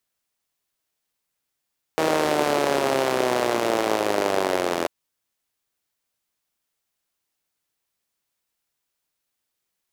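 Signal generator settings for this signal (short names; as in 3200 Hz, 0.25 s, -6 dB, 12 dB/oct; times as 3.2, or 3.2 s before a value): four-cylinder engine model, changing speed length 2.89 s, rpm 4800, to 2500, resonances 390/560 Hz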